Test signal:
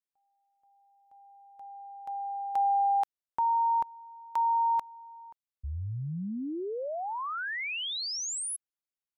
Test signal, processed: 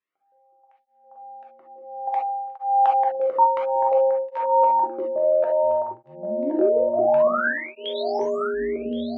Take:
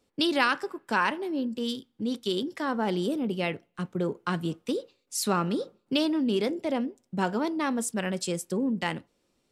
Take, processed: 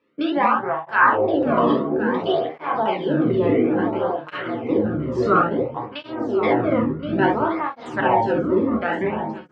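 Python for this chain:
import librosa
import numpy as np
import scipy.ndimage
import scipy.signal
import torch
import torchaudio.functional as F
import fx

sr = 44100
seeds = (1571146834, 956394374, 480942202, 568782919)

p1 = scipy.signal.sosfilt(scipy.signal.butter(2, 6000.0, 'lowpass', fs=sr, output='sos'), x)
p2 = fx.low_shelf(p1, sr, hz=200.0, db=-9.5)
p3 = fx.rider(p2, sr, range_db=5, speed_s=0.5)
p4 = p2 + (p3 * librosa.db_to_amplitude(0.5))
p5 = fx.filter_lfo_lowpass(p4, sr, shape='saw_down', hz=1.4, low_hz=720.0, high_hz=2300.0, q=1.9)
p6 = fx.echo_pitch(p5, sr, ms=88, semitones=-7, count=3, db_per_echo=-3.0)
p7 = p6 + fx.echo_feedback(p6, sr, ms=1072, feedback_pct=32, wet_db=-10.5, dry=0)
p8 = fx.rev_gated(p7, sr, seeds[0], gate_ms=90, shape='flat', drr_db=-1.5)
y = fx.flanger_cancel(p8, sr, hz=0.58, depth_ms=1.4)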